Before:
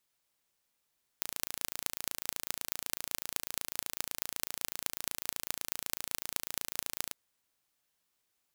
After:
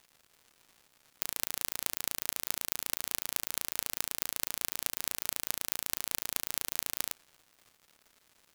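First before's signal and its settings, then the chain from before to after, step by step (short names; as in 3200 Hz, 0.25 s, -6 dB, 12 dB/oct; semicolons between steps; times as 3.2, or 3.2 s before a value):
pulse train 28/s, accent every 6, -3.5 dBFS 5.91 s
bell 14000 Hz +2 dB; crackle 280/s -51 dBFS; in parallel at -6 dB: hard clip -11.5 dBFS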